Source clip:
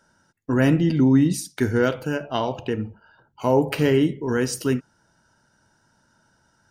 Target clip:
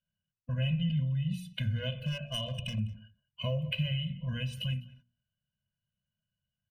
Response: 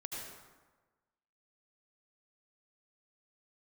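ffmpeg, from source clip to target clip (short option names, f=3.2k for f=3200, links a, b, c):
-filter_complex "[0:a]bandreject=f=60:t=h:w=6,bandreject=f=120:t=h:w=6,bandreject=f=180:t=h:w=6,bandreject=f=240:t=h:w=6,agate=range=-23dB:threshold=-50dB:ratio=16:detection=peak,firequalizer=gain_entry='entry(140,0);entry(230,-7);entry(330,-9);entry(560,-13);entry(880,-18);entry(1900,-12);entry(2800,9);entry(5000,-23);entry(7900,-23);entry(11000,-16)':delay=0.05:min_phase=1,acompressor=threshold=-32dB:ratio=4,asettb=1/sr,asplit=3[a][b][c];[a]atrim=end=2.054[d];[b]atrim=start=2.05:end=2.79,asetpts=PTS-STARTPTS,afade=t=in:d=0.004:c=qsin,afade=t=out:st=0.736:d=0.004:c=qsin,volume=31dB,asoftclip=hard,volume=-31dB[e];[c]atrim=start=2.786[f];[d][e]acrossfade=d=0.004:c1=hsin:c2=qsin[g];[g][f]acrossfade=d=0.004:c1=qsin:c2=hsin,aecho=1:1:203:0.075,afftfilt=real='re*eq(mod(floor(b*sr/1024/240),2),0)':imag='im*eq(mod(floor(b*sr/1024/240),2),0)':win_size=1024:overlap=0.75,volume=4.5dB"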